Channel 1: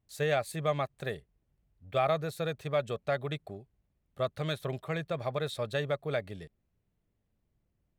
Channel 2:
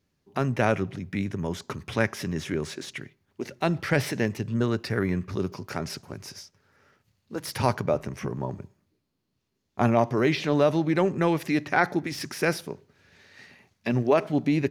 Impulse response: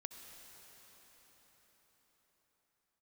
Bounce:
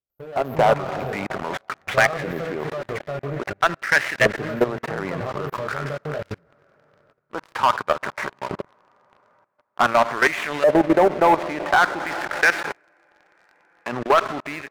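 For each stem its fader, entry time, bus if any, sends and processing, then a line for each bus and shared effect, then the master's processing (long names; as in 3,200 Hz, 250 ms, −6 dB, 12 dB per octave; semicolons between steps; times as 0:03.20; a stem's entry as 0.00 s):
−8.0 dB, 0.00 s, send −4.5 dB, brick-wall band-stop 1,500–12,000 Hz; chorus effect 0.44 Hz, delay 16 ms, depth 5.9 ms
−1.0 dB, 0.00 s, send −3 dB, gap after every zero crossing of 0.095 ms; auto-filter band-pass saw up 0.47 Hz 560–2,100 Hz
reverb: on, RT60 5.6 s, pre-delay 57 ms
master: output level in coarse steps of 16 dB; leveller curve on the samples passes 3; automatic gain control gain up to 10 dB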